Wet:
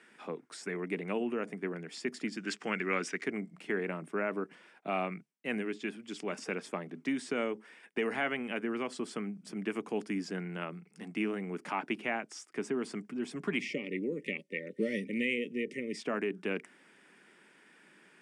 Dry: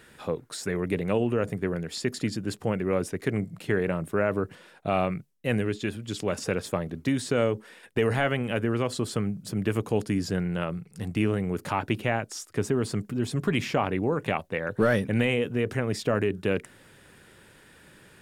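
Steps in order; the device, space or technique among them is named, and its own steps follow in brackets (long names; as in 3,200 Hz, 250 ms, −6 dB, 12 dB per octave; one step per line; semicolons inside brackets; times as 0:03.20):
high-pass filter 150 Hz 24 dB per octave
0:13.60–0:15.97: gain on a spectral selection 600–1,800 Hz −28 dB
television speaker (loudspeaker in its box 190–8,500 Hz, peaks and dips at 530 Hz −7 dB, 2,200 Hz +5 dB, 4,000 Hz −8 dB, 6,900 Hz −5 dB)
0:02.37–0:03.24: flat-topped bell 3,100 Hz +10.5 dB 2.9 octaves
level −6 dB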